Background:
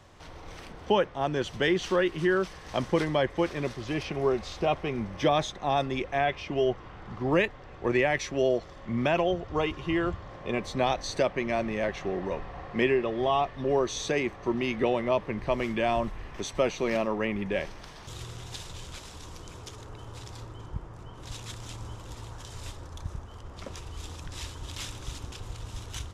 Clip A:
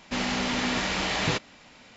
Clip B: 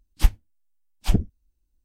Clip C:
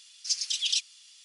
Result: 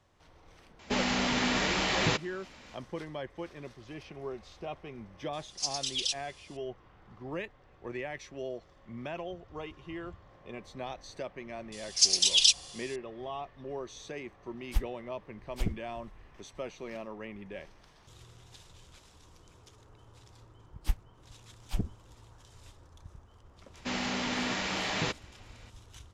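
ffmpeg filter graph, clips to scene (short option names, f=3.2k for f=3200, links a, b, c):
-filter_complex "[1:a]asplit=2[a][b];[3:a]asplit=2[c][d];[2:a]asplit=2[e][f];[0:a]volume=-13.5dB[g];[d]tiltshelf=f=970:g=-9.5[h];[b]highpass=100[i];[a]atrim=end=1.96,asetpts=PTS-STARTPTS,volume=-1.5dB,afade=t=in:d=0.004:c=hsin,afade=t=out:st=1.956:d=0.004:c=hsin,adelay=790[j];[c]atrim=end=1.24,asetpts=PTS-STARTPTS,volume=-4.5dB,afade=t=in:d=0.004:c=hsin,afade=t=out:st=1.236:d=0.004:c=hsin,adelay=235053S[k];[h]atrim=end=1.24,asetpts=PTS-STARTPTS,volume=-3dB,afade=t=in:d=0.004:c=hsin,afade=t=out:st=1.236:d=0.004:c=hsin,adelay=11720[l];[e]atrim=end=1.84,asetpts=PTS-STARTPTS,volume=-11.5dB,afade=t=in:d=0.004:c=hsin,afade=t=out:st=1.836:d=0.004:c=hsin,adelay=14520[m];[f]atrim=end=1.84,asetpts=PTS-STARTPTS,volume=-12dB,afade=t=in:d=0.004:c=hsin,afade=t=out:st=1.836:d=0.004:c=hsin,adelay=20650[n];[i]atrim=end=1.96,asetpts=PTS-STARTPTS,volume=-5dB,afade=t=in:d=0.004:c=hsin,afade=t=out:st=1.956:d=0.004:c=hsin,adelay=23740[o];[g][j][k][l][m][n][o]amix=inputs=7:normalize=0"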